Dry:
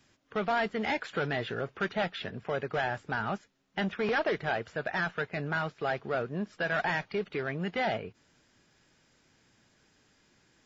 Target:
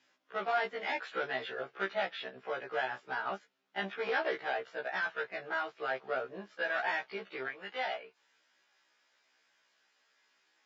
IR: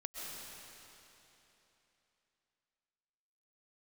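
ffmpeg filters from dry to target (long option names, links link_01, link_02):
-af "asetnsamples=nb_out_samples=441:pad=0,asendcmd='7.48 highpass f 790',highpass=430,lowpass=5100,afftfilt=real='re*1.73*eq(mod(b,3),0)':imag='im*1.73*eq(mod(b,3),0)':win_size=2048:overlap=0.75"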